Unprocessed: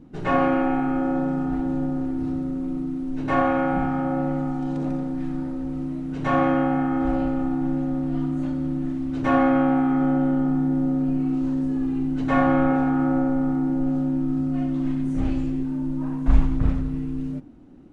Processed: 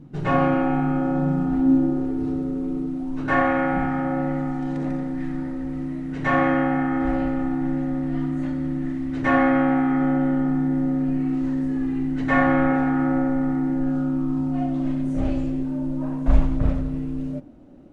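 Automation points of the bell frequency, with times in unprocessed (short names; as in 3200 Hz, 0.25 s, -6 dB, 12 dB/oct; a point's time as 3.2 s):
bell +11.5 dB 0.37 oct
1.22 s 140 Hz
2.07 s 420 Hz
2.83 s 420 Hz
3.37 s 1900 Hz
13.74 s 1900 Hz
14.89 s 590 Hz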